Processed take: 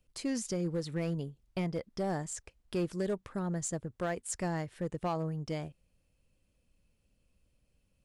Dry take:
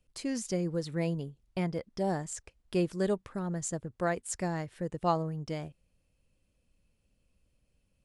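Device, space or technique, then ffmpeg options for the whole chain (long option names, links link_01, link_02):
limiter into clipper: -af "alimiter=limit=-23dB:level=0:latency=1:release=136,asoftclip=type=hard:threshold=-26.5dB"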